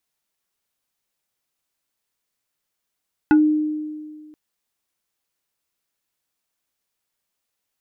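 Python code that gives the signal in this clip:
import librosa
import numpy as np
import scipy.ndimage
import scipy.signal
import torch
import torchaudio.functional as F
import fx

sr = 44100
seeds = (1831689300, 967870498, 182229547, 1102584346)

y = fx.fm2(sr, length_s=1.03, level_db=-9.0, carrier_hz=305.0, ratio=3.77, index=0.78, index_s=0.14, decay_s=1.84, shape='exponential')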